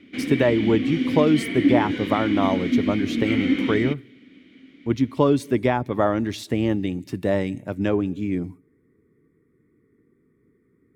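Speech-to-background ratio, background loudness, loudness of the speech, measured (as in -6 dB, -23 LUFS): 1.0 dB, -24.5 LUFS, -23.5 LUFS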